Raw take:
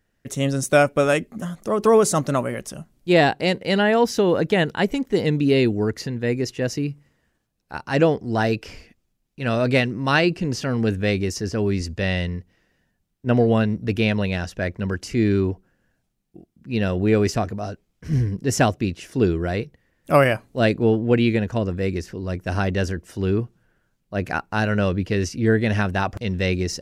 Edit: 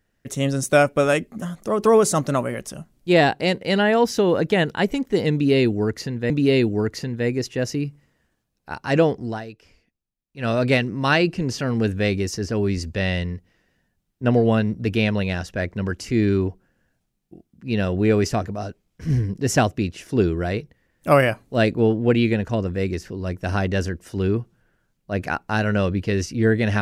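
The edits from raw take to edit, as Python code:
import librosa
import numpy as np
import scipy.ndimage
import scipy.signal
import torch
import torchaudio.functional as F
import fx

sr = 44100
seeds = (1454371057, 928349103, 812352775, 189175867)

y = fx.edit(x, sr, fx.repeat(start_s=5.33, length_s=0.97, count=2),
    fx.fade_down_up(start_s=8.27, length_s=1.24, db=-16.0, fade_s=0.24, curve='qua'), tone=tone)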